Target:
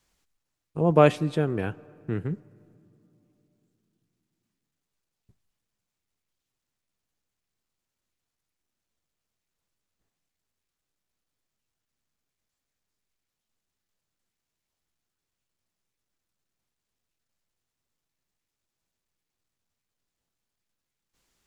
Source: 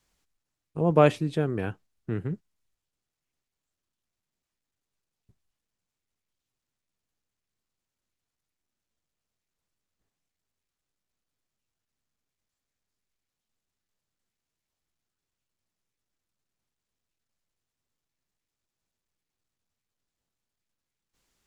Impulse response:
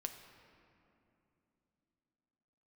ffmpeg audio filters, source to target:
-filter_complex "[0:a]asplit=2[link_01][link_02];[1:a]atrim=start_sample=2205,lowshelf=frequency=160:gain=-6.5[link_03];[link_02][link_03]afir=irnorm=-1:irlink=0,volume=-10.5dB[link_04];[link_01][link_04]amix=inputs=2:normalize=0"

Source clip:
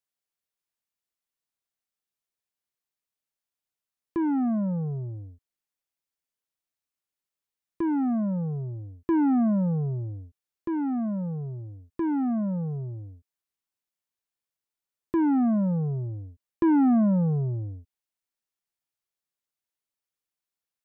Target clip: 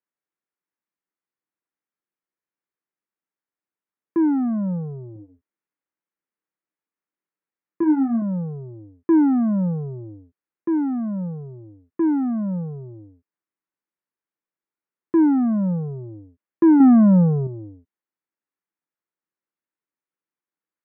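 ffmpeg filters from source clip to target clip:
ffmpeg -i in.wav -filter_complex "[0:a]asettb=1/sr,asplit=3[link_01][link_02][link_03];[link_01]atrim=end=5.134[link_04];[link_02]atrim=start=5.13:end=8.22,asetpts=PTS-STARTPTS,afade=type=in:duration=0.004:curve=qsin,afade=type=out:start_time=3.086:duration=0.004:curve=qsin,asplit=2[link_05][link_06];[link_06]adelay=26,volume=-6dB[link_07];[link_05][link_07]amix=inputs=2:normalize=0,atrim=end_sample=136269[link_08];[link_03]atrim=start=8.216[link_09];[link_04][link_08]acrossfade=duration=0.004:curve1=hsin:curve2=qsin[link_10];[link_10][link_09]acrossfade=duration=0.004:curve1=qsin:curve2=hsin,asettb=1/sr,asplit=3[link_11][link_12][link_13];[link_11]atrim=end=16.804[link_14];[link_12]atrim=start=16.8:end=17.47,asetpts=PTS-STARTPTS,afade=type=in:duration=0.004:curve=qsin,afade=type=out:start_time=0.666:duration=0.004:curve=qsin,acontrast=37[link_15];[link_13]atrim=start=17.466[link_16];[link_14][link_15]acrossfade=duration=0.004:curve1=hsin:curve2=qsin[link_17];[link_17][link_16]acrossfade=duration=0.004:curve1=qsin:curve2=hsin,highpass=180,equalizer=frequency=180:width_type=q:width=4:gain=4,equalizer=frequency=320:width_type=q:width=4:gain=6,equalizer=frequency=680:width_type=q:width=4:gain=-5,lowpass=frequency=2100:width=0.5412,lowpass=frequency=2100:width=1.3066,volume=2.5dB" out.wav

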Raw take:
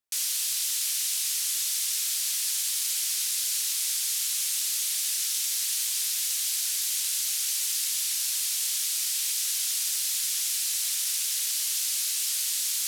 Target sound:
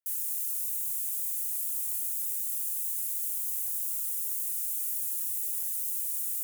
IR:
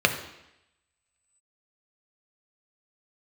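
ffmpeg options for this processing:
-filter_complex "[0:a]highpass=410,equalizer=frequency=2300:width_type=o:width=1.2:gain=-14,bandreject=frequency=7100:width=17,acrossover=split=980|2200|5900[link_01][link_02][link_03][link_04];[link_02]alimiter=level_in=31.5dB:limit=-24dB:level=0:latency=1,volume=-31.5dB[link_05];[link_01][link_05][link_03][link_04]amix=inputs=4:normalize=0,asetrate=88200,aresample=44100"

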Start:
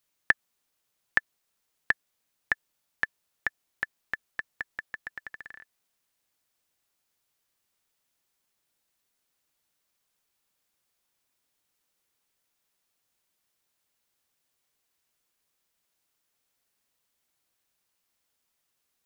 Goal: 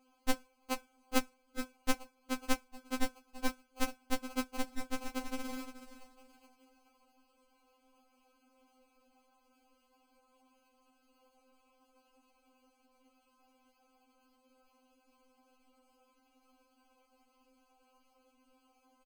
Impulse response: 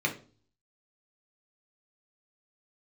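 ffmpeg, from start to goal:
-filter_complex "[0:a]highpass=210,equalizer=frequency=280:width_type=q:width=4:gain=6,equalizer=frequency=400:width_type=q:width=4:gain=8,equalizer=frequency=730:width_type=q:width=4:gain=6,equalizer=frequency=3200:width_type=q:width=4:gain=-4,equalizer=frequency=4700:width_type=q:width=4:gain=-3,lowpass=frequency=6800:width=0.5412,lowpass=frequency=6800:width=1.3066,asplit=2[link_01][link_02];[link_02]adelay=20,volume=-8.5dB[link_03];[link_01][link_03]amix=inputs=2:normalize=0,asplit=2[link_04][link_05];[link_05]adelay=424,lowpass=frequency=970:poles=1,volume=-9dB,asplit=2[link_06][link_07];[link_07]adelay=424,lowpass=frequency=970:poles=1,volume=0.48,asplit=2[link_08][link_09];[link_09]adelay=424,lowpass=frequency=970:poles=1,volume=0.48,asplit=2[link_10][link_11];[link_11]adelay=424,lowpass=frequency=970:poles=1,volume=0.48,asplit=2[link_12][link_13];[link_13]adelay=424,lowpass=frequency=970:poles=1,volume=0.48[link_14];[link_04][link_06][link_08][link_10][link_12][link_14]amix=inputs=6:normalize=0,asplit=2[link_15][link_16];[1:a]atrim=start_sample=2205,asetrate=70560,aresample=44100[link_17];[link_16][link_17]afir=irnorm=-1:irlink=0,volume=-18dB[link_18];[link_15][link_18]amix=inputs=2:normalize=0,alimiter=limit=-9.5dB:level=0:latency=1:release=143,highshelf=frequency=3900:gain=5,bandreject=frequency=60:width_type=h:width=6,bandreject=frequency=120:width_type=h:width=6,bandreject=frequency=180:width_type=h:width=6,bandreject=frequency=240:width_type=h:width=6,bandreject=frequency=300:width_type=h:width=6,bandreject=frequency=360:width_type=h:width=6,bandreject=frequency=420:width_type=h:width=6,bandreject=frequency=480:width_type=h:width=6,acrusher=samples=24:mix=1:aa=0.000001,acompressor=threshold=-42dB:ratio=2,afftfilt=real='re*3.46*eq(mod(b,12),0)':imag='im*3.46*eq(mod(b,12),0)':win_size=2048:overlap=0.75,volume=14.5dB"

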